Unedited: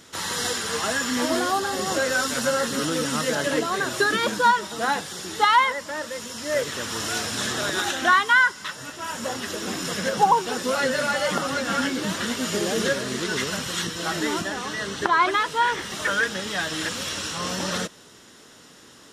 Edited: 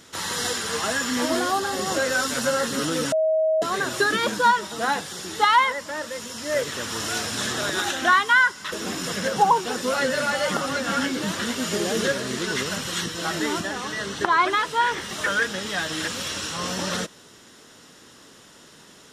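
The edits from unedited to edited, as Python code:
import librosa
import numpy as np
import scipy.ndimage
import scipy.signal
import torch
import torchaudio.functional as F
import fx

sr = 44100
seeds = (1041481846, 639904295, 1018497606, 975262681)

y = fx.edit(x, sr, fx.bleep(start_s=3.12, length_s=0.5, hz=634.0, db=-17.5),
    fx.cut(start_s=8.72, length_s=0.81), tone=tone)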